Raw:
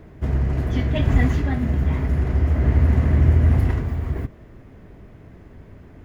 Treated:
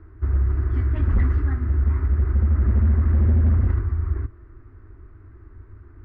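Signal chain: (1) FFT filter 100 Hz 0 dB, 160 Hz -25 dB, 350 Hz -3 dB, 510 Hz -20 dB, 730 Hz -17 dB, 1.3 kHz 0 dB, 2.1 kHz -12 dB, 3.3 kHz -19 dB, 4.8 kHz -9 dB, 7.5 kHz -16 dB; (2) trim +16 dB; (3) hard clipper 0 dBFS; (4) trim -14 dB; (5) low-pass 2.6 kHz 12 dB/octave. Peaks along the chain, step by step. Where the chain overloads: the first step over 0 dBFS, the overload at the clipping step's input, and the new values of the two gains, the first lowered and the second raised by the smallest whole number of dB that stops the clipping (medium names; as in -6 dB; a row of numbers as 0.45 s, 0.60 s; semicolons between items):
-6.0 dBFS, +10.0 dBFS, 0.0 dBFS, -14.0 dBFS, -14.0 dBFS; step 2, 10.0 dB; step 2 +6 dB, step 4 -4 dB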